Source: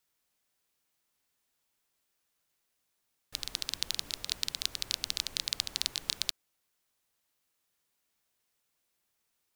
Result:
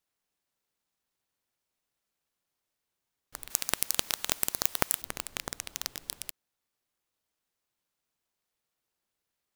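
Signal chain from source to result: 3.50–5.02 s: tilt EQ +4.5 dB/octave; delay time shaken by noise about 2.4 kHz, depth 0.13 ms; trim -4.5 dB

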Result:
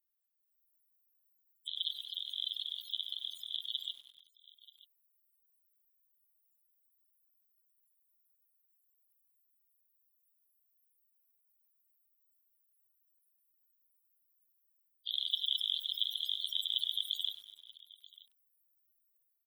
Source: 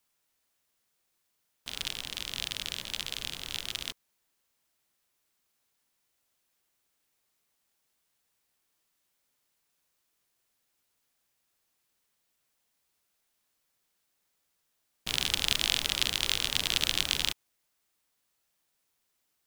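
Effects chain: reverb removal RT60 1.4 s; pre-emphasis filter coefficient 0.97; level rider gain up to 10 dB; in parallel at -11.5 dB: sine folder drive 5 dB, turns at -2 dBFS; on the sum: loudest bins only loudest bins 16; delay 933 ms -21 dB; bit-crushed delay 97 ms, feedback 55%, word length 8-bit, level -15 dB; trim -1.5 dB

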